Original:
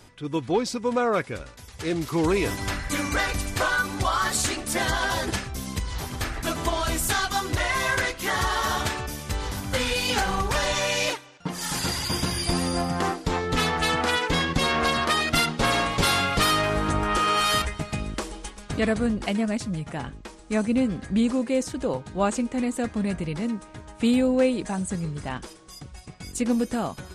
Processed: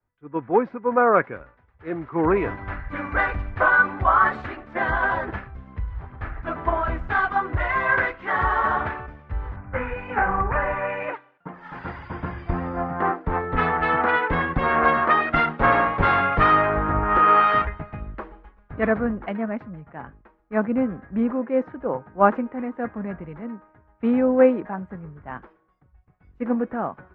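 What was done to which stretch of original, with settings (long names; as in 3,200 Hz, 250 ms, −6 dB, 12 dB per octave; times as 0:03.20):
0:09.56–0:11.14: flat-topped bell 4,300 Hz −16 dB 1.1 octaves
whole clip: low-pass filter 1,700 Hz 24 dB per octave; tilt shelving filter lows −4.5 dB, about 650 Hz; multiband upward and downward expander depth 100%; level +3.5 dB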